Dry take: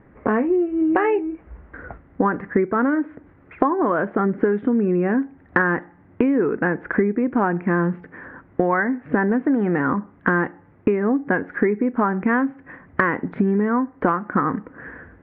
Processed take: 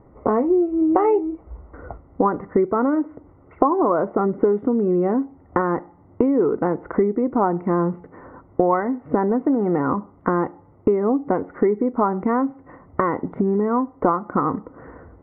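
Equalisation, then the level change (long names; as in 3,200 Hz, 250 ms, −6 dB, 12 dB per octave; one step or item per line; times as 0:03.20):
Savitzky-Golay smoothing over 65 samples
parametric band 200 Hz −6 dB 1.2 octaves
+3.5 dB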